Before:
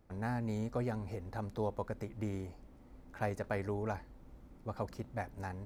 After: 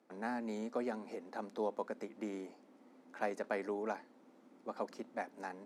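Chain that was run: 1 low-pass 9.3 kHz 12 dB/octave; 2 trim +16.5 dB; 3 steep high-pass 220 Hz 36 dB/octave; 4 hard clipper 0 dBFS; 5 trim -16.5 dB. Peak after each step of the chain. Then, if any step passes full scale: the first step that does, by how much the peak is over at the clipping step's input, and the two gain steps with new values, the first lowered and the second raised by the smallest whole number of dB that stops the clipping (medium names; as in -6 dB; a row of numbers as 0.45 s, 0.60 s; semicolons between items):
-20.5 dBFS, -4.0 dBFS, -6.0 dBFS, -6.0 dBFS, -22.5 dBFS; nothing clips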